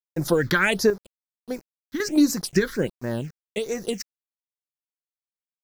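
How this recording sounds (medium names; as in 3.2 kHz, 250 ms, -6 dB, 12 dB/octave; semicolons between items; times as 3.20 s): chopped level 0.5 Hz, depth 60%, duty 45%; a quantiser's noise floor 8-bit, dither none; phasing stages 6, 1.4 Hz, lowest notch 670–3100 Hz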